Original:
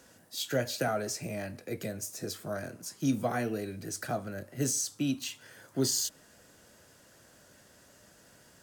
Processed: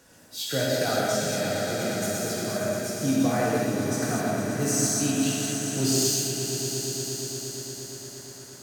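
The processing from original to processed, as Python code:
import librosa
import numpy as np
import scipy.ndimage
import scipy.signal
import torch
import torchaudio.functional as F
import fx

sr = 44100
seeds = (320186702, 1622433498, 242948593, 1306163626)

p1 = x + fx.echo_swell(x, sr, ms=117, loudest=5, wet_db=-11, dry=0)
y = fx.rev_gated(p1, sr, seeds[0], gate_ms=270, shape='flat', drr_db=-5.0)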